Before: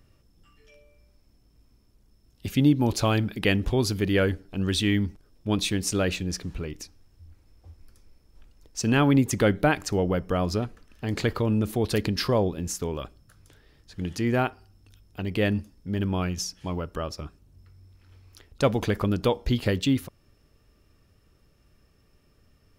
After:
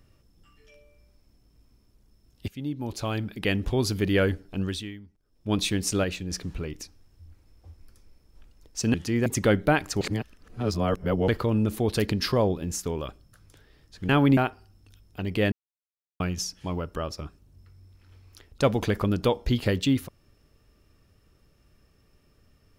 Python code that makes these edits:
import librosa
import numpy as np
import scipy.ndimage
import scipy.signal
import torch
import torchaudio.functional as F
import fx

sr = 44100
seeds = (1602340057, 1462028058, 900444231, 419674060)

y = fx.edit(x, sr, fx.fade_in_from(start_s=2.48, length_s=1.52, floor_db=-18.5),
    fx.fade_down_up(start_s=4.58, length_s=0.96, db=-21.5, fade_s=0.46, curve='qua'),
    fx.clip_gain(start_s=6.04, length_s=0.27, db=-4.0),
    fx.swap(start_s=8.94, length_s=0.28, other_s=14.05, other_length_s=0.32),
    fx.reverse_span(start_s=9.97, length_s=1.27),
    fx.silence(start_s=15.52, length_s=0.68), tone=tone)